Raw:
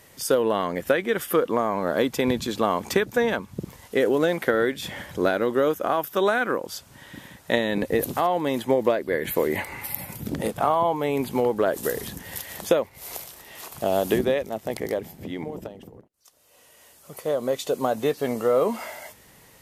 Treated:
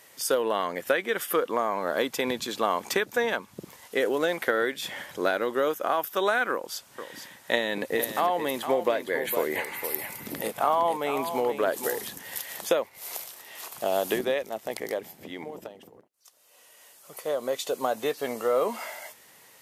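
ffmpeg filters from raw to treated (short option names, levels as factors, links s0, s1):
-filter_complex "[0:a]asettb=1/sr,asplit=3[s0][s1][s2];[s0]atrim=end=6.524[s3];[s1]atrim=start=6.52:end=12.04,asetpts=PTS-STARTPTS,afade=t=in:d=0.004:c=qsin,afade=t=out:st=5.516:d=0.004:c=qsin,aecho=1:1:460:0.355,atrim=end_sample=243432[s4];[s2]atrim=start=12.036[s5];[s3][s4]acrossfade=d=0.004:c1=hsin:c2=qsin[s6];[s6][s5]acrossfade=d=0.004:c1=qsin:c2=hsin,highpass=f=620:p=1"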